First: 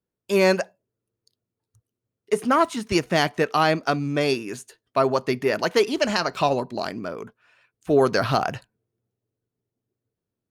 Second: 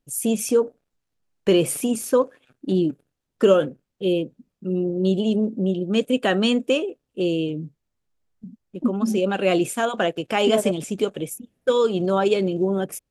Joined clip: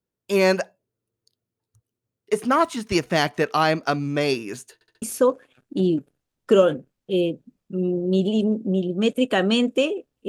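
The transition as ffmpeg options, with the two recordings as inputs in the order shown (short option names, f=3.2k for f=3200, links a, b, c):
-filter_complex "[0:a]apad=whole_dur=10.28,atrim=end=10.28,asplit=4[a][b][c][d];[a]atrim=end=4.812[e];[b]atrim=start=4.738:end=4.812[f];[c]atrim=start=4.738:end=4.812[g];[d]atrim=start=4.738:end=4.812[h];[1:a]atrim=start=1.938:end=7.2[i];[e][f]acrossfade=d=0.004:c1=hsin:c2=hsin[j];[j][g]acrossfade=d=0.004:c1=hsin:c2=hsin[k];[k][h]acrossfade=d=0.004:c1=hsin:c2=hsin[l];[l][i]acrossfade=d=0.004:c1=hsin:c2=hsin"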